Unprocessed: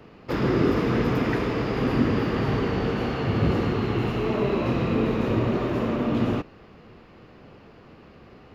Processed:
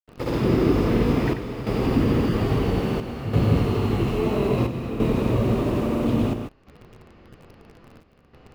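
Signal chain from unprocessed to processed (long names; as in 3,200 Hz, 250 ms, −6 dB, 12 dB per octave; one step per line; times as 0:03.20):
granular cloud 205 ms, grains 12 per second, pitch spread up and down by 0 semitones
in parallel at −5.5 dB: bit reduction 7 bits
on the sum: low-shelf EQ 68 Hz +9 dB
square-wave tremolo 0.6 Hz, depth 60%, duty 80%
dynamic equaliser 1,600 Hz, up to −6 dB, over −44 dBFS, Q 1.7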